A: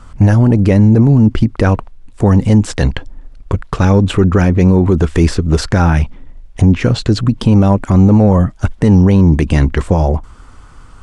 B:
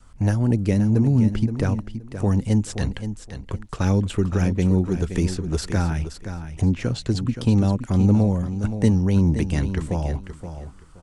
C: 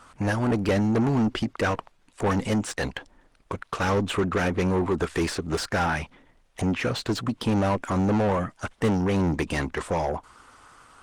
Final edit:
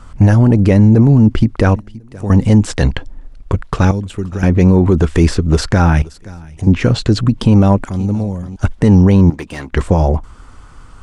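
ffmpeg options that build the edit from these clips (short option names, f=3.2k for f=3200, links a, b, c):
-filter_complex "[1:a]asplit=4[a][b][c][d];[0:a]asplit=6[e][f][g][h][i][j];[e]atrim=end=1.762[k];[a]atrim=start=1.758:end=2.302[l];[f]atrim=start=2.298:end=3.912[m];[b]atrim=start=3.908:end=4.432[n];[g]atrim=start=4.428:end=6.022[o];[c]atrim=start=6.018:end=6.672[p];[h]atrim=start=6.668:end=7.892[q];[d]atrim=start=7.888:end=8.562[r];[i]atrim=start=8.558:end=9.302[s];[2:a]atrim=start=9.298:end=9.732[t];[j]atrim=start=9.728[u];[k][l]acrossfade=d=0.004:c1=hsin:c2=hsin[v];[v][m]acrossfade=d=0.004:c1=hsin:c2=hsin[w];[w][n]acrossfade=d=0.004:c1=hsin:c2=hsin[x];[x][o]acrossfade=d=0.004:c1=hsin:c2=hsin[y];[y][p]acrossfade=d=0.004:c1=hsin:c2=hsin[z];[z][q]acrossfade=d=0.004:c1=hsin:c2=hsin[aa];[aa][r]acrossfade=d=0.004:c1=hsin:c2=hsin[ab];[ab][s]acrossfade=d=0.004:c1=hsin:c2=hsin[ac];[ac][t]acrossfade=d=0.004:c1=hsin:c2=hsin[ad];[ad][u]acrossfade=d=0.004:c1=hsin:c2=hsin"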